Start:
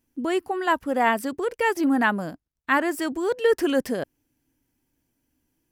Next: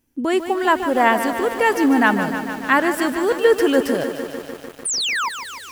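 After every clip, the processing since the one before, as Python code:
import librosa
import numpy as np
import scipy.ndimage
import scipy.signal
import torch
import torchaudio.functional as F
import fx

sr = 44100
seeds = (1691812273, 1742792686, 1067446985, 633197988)

y = fx.spec_paint(x, sr, seeds[0], shape='fall', start_s=4.85, length_s=0.44, low_hz=870.0, high_hz=10000.0, level_db=-27.0)
y = fx.echo_crushed(y, sr, ms=149, feedback_pct=80, bits=7, wet_db=-9.5)
y = F.gain(torch.from_numpy(y), 5.0).numpy()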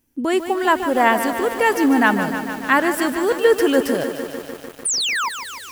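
y = fx.high_shelf(x, sr, hz=8300.0, db=4.5)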